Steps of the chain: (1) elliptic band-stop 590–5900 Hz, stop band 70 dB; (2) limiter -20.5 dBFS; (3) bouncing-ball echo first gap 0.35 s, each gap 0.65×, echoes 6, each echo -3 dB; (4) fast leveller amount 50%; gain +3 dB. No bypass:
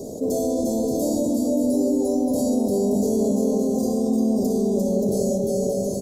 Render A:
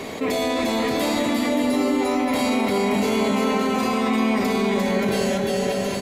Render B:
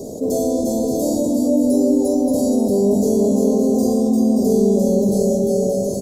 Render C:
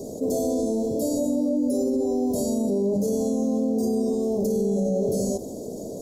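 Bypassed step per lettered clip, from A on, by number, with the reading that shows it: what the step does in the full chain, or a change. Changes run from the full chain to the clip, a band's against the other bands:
1, 4 kHz band +15.0 dB; 2, mean gain reduction 2.5 dB; 3, crest factor change -1.5 dB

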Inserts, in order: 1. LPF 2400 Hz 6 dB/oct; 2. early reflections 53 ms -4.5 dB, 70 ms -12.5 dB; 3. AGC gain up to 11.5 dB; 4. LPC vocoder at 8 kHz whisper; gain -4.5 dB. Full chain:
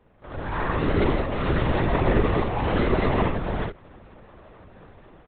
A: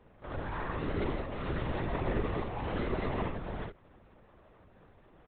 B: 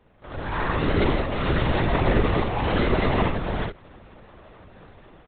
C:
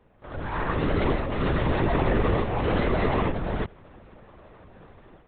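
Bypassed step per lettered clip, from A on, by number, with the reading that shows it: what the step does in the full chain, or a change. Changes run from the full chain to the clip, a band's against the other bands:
3, momentary loudness spread change -2 LU; 1, 4 kHz band +4.0 dB; 2, loudness change -1.5 LU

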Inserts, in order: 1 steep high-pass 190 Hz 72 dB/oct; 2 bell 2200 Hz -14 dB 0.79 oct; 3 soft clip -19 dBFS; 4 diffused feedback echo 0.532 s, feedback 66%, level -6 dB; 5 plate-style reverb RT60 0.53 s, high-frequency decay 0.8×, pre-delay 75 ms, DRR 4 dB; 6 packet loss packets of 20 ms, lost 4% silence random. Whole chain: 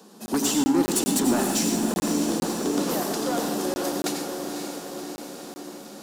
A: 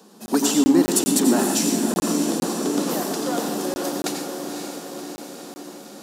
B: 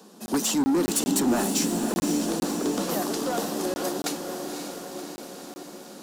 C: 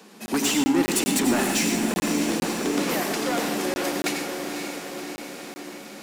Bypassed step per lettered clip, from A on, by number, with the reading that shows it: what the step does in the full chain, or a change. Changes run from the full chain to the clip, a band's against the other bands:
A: 3, distortion -11 dB; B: 5, crest factor change -1.5 dB; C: 2, 2 kHz band +7.5 dB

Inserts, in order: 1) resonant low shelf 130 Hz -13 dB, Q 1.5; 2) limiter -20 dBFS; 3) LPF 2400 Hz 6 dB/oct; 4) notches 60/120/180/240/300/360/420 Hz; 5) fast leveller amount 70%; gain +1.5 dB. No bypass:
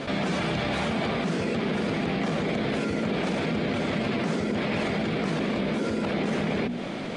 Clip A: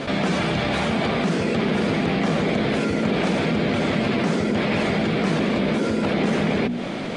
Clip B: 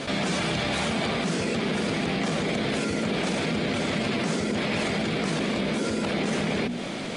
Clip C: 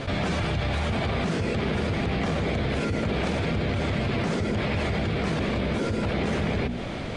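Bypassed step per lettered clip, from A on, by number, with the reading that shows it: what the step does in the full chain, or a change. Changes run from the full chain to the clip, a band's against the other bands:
2, mean gain reduction 2.5 dB; 3, 8 kHz band +9.0 dB; 1, 125 Hz band +5.0 dB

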